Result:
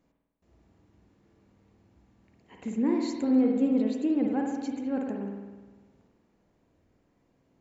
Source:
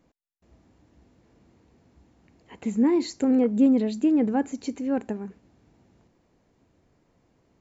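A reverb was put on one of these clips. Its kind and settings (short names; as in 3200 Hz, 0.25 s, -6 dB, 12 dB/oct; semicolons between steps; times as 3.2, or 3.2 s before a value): spring tank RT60 1.3 s, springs 50 ms, chirp 55 ms, DRR 0.5 dB; gain -6.5 dB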